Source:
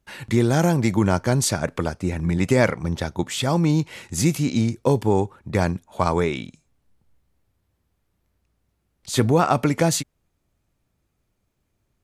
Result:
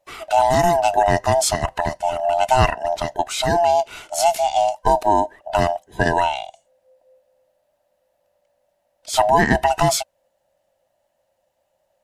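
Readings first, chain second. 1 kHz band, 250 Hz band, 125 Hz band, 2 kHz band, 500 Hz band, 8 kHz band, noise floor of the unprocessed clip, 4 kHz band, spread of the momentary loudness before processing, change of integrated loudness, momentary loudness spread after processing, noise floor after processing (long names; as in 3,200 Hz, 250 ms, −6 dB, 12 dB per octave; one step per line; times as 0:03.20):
+10.5 dB, −6.5 dB, −6.0 dB, +4.5 dB, +4.5 dB, +2.0 dB, −73 dBFS, +4.0 dB, 8 LU, +2.5 dB, 8 LU, −70 dBFS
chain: neighbouring bands swapped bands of 500 Hz
level +2.5 dB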